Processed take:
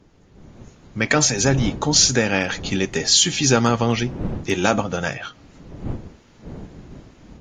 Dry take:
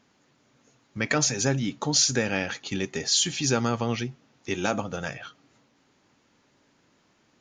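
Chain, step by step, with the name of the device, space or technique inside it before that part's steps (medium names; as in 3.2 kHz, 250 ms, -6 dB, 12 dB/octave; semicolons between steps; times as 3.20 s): smartphone video outdoors (wind noise 230 Hz -42 dBFS; level rider gain up to 9 dB; AAC 48 kbps 48 kHz)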